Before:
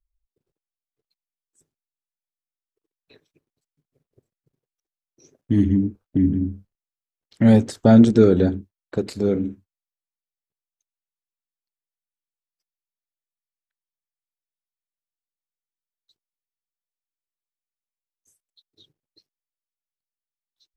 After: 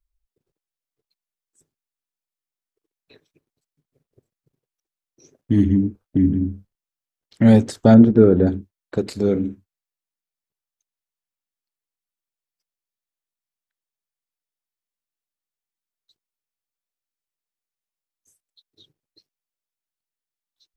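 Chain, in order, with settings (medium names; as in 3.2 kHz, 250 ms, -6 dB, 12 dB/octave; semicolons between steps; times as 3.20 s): 7.94–8.47 s: low-pass 1.4 kHz 12 dB/octave; trim +1.5 dB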